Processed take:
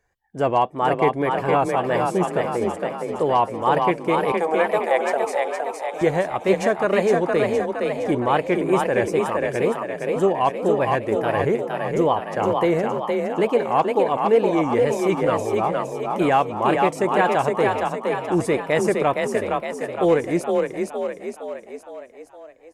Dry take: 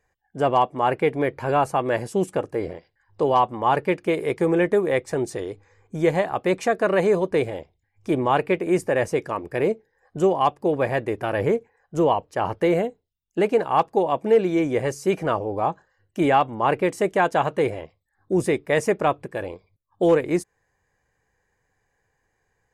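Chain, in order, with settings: 4.32–6.02 resonant high-pass 730 Hz, resonance Q 5.4; wow and flutter 76 cents; frequency-shifting echo 0.464 s, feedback 54%, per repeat +31 Hz, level -3.5 dB

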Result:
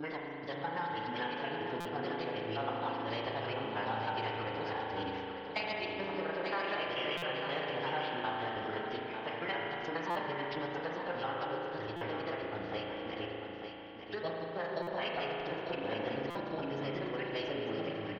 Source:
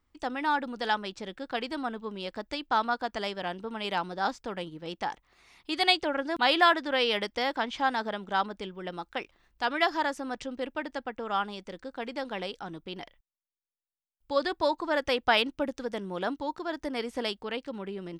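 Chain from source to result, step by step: slices in reverse order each 0.107 s, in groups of 4; HPF 48 Hz 12 dB/oct; gate -52 dBFS, range -44 dB; LPF 6800 Hz 24 dB/oct; de-hum 240.9 Hz, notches 3; dynamic EQ 1100 Hz, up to -4 dB, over -47 dBFS, Q 4.8; compressor 6:1, threshold -35 dBFS, peak gain reduction 15.5 dB; formant-preserving pitch shift -9.5 st; low shelf 240 Hz -5.5 dB; feedback echo 0.897 s, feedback 29%, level -7 dB; spring tank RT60 3.3 s, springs 36 ms, chirp 75 ms, DRR -2 dB; stuck buffer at 1.8/7.17/10.1/11.96/14.82/16.3, samples 256, times 8

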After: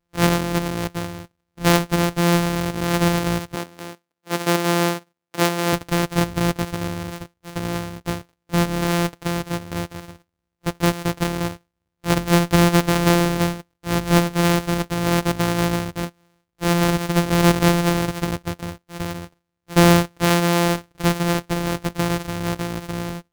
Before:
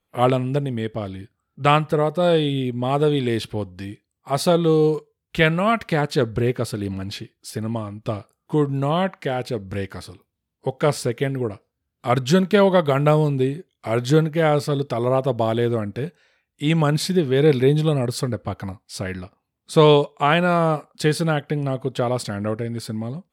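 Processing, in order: sample sorter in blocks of 256 samples; 3.55–5.73 HPF 230 Hz 12 dB/oct

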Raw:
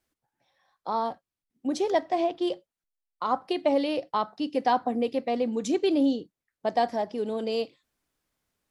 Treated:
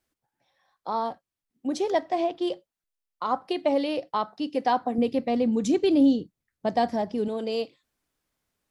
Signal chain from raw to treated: 4.98–7.28 tone controls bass +11 dB, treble +1 dB

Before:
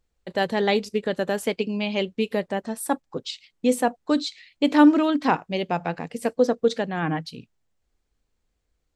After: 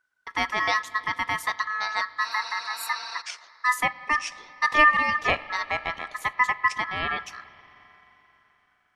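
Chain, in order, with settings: spectral repair 2.26–3.19, 700–8300 Hz before; spring tank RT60 3.9 s, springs 43/56 ms, chirp 70 ms, DRR 17 dB; ring modulator 1500 Hz

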